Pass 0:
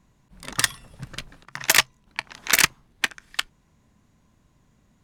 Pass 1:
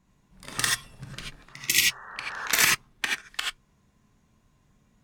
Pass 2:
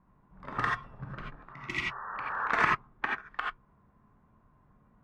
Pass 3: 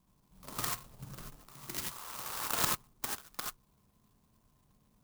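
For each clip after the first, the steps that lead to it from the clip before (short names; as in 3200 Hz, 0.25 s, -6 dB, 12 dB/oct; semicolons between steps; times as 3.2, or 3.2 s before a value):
non-linear reverb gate 0.11 s rising, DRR -2 dB; spectral repair 1.52–2.45, 370–1900 Hz both; gain -6 dB
synth low-pass 1200 Hz, resonance Q 2
clock jitter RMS 0.15 ms; gain -5.5 dB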